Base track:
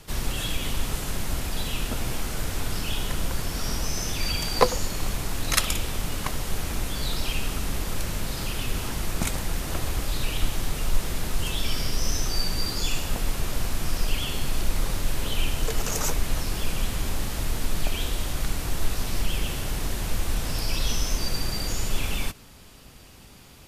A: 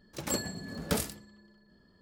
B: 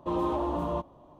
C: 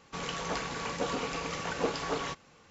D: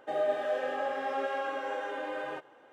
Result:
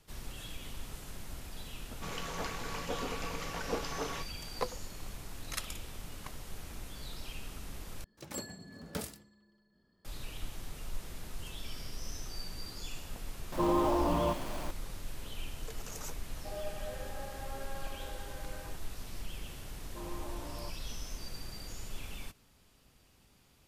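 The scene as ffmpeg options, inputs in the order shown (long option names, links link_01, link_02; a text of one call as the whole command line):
ffmpeg -i bed.wav -i cue0.wav -i cue1.wav -i cue2.wav -i cue3.wav -filter_complex "[2:a]asplit=2[link_01][link_02];[0:a]volume=-16dB[link_03];[link_01]aeval=exprs='val(0)+0.5*0.015*sgn(val(0))':channel_layout=same[link_04];[link_02]asoftclip=type=tanh:threshold=-26dB[link_05];[link_03]asplit=2[link_06][link_07];[link_06]atrim=end=8.044[link_08];[1:a]atrim=end=2.01,asetpts=PTS-STARTPTS,volume=-9dB[link_09];[link_07]atrim=start=10.046[link_10];[3:a]atrim=end=2.7,asetpts=PTS-STARTPTS,volume=-5dB,afade=type=in:duration=0.004:curve=hsin,afade=type=out:start_time=2.696:duration=0.004:curve=hsin,adelay=1890[link_11];[link_04]atrim=end=1.19,asetpts=PTS-STARTPTS,volume=-1dB,afade=type=in:duration=0.004:curve=hsin,afade=type=out:start_time=1.186:duration=0.004:curve=hsin,adelay=13520[link_12];[4:a]atrim=end=2.72,asetpts=PTS-STARTPTS,volume=-13dB,afade=type=in:duration=0.004:curve=hsin,afade=type=out:start_time=2.716:duration=0.004:curve=hsin,adelay=16370[link_13];[link_05]atrim=end=1.19,asetpts=PTS-STARTPTS,volume=-13.5dB,afade=type=in:duration=0.004:curve=hsin,afade=type=out:start_time=1.186:duration=0.004:curve=hsin,adelay=19890[link_14];[link_08][link_09]acrossfade=duration=0.004:curve1=hsin:curve2=hsin[link_15];[link_15][link_10]acrossfade=duration=0.004:curve1=hsin:curve2=hsin[link_16];[link_16][link_11][link_12][link_13][link_14]amix=inputs=5:normalize=0" out.wav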